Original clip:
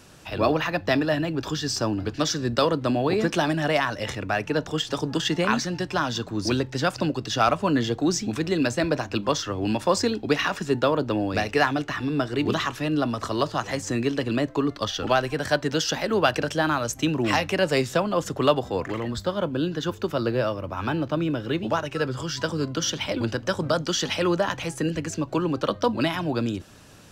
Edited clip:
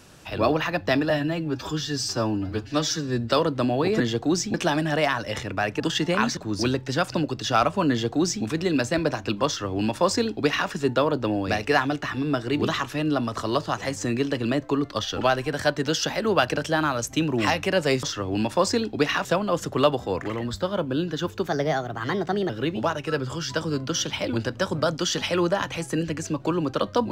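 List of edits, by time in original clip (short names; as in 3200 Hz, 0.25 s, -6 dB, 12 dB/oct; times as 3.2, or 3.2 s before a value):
1.1–2.58 stretch 1.5×
4.52–5.1 cut
5.67–6.23 cut
7.76–8.3 copy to 3.26
9.33–10.55 copy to 17.89
20.11–21.37 speed 123%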